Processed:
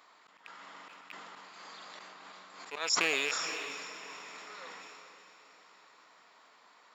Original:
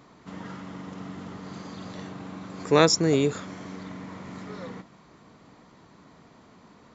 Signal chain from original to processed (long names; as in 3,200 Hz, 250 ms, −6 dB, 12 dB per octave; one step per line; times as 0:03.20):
loose part that buzzes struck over −34 dBFS, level −19 dBFS
high-pass filter 970 Hz 12 dB per octave
notch filter 6,100 Hz, Q 9.2
volume swells 274 ms
feedback delay with all-pass diffusion 469 ms, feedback 51%, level −11 dB
level that may fall only so fast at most 20 dB per second
level −1.5 dB